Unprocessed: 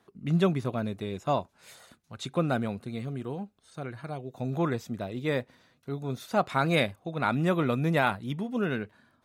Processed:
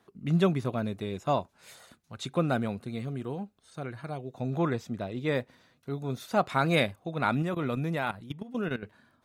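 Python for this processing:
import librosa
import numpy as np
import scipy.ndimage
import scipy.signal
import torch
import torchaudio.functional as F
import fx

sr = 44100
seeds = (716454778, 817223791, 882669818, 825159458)

y = fx.high_shelf(x, sr, hz=11000.0, db=-12.0, at=(4.31, 5.35))
y = fx.level_steps(y, sr, step_db=15, at=(7.42, 8.83))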